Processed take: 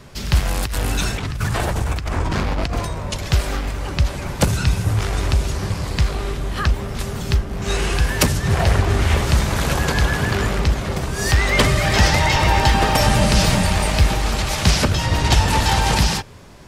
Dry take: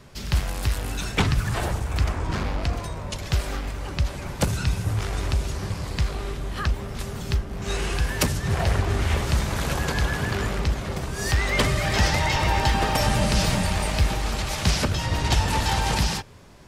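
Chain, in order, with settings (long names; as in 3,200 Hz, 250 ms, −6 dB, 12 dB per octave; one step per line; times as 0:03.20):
0:00.45–0:02.85: compressor whose output falls as the input rises −27 dBFS, ratio −1
level +6 dB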